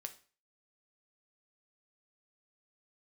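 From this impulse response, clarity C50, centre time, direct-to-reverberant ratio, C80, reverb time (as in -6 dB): 14.5 dB, 6 ms, 7.0 dB, 19.5 dB, 0.40 s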